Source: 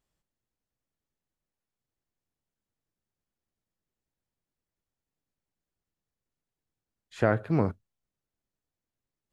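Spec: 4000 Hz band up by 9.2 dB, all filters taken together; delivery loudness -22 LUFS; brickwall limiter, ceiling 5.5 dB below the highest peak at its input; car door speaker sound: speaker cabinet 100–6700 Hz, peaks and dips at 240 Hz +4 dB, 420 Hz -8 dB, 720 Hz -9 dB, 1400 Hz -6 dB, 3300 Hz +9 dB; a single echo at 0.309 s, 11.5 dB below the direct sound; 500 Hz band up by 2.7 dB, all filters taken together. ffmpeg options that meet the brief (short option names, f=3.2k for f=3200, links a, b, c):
-af "equalizer=f=500:t=o:g=8.5,equalizer=f=4k:t=o:g=4,alimiter=limit=-11.5dB:level=0:latency=1,highpass=100,equalizer=f=240:t=q:w=4:g=4,equalizer=f=420:t=q:w=4:g=-8,equalizer=f=720:t=q:w=4:g=-9,equalizer=f=1.4k:t=q:w=4:g=-6,equalizer=f=3.3k:t=q:w=4:g=9,lowpass=f=6.7k:w=0.5412,lowpass=f=6.7k:w=1.3066,aecho=1:1:309:0.266,volume=7.5dB"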